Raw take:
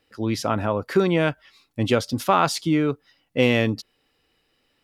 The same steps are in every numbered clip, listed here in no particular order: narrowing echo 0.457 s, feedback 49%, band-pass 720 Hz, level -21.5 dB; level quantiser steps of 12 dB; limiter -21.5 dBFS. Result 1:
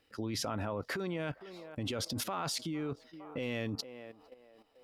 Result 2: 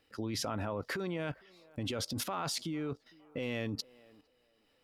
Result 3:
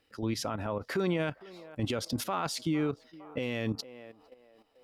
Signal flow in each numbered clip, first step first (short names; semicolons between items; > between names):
narrowing echo > limiter > level quantiser; limiter > narrowing echo > level quantiser; narrowing echo > level quantiser > limiter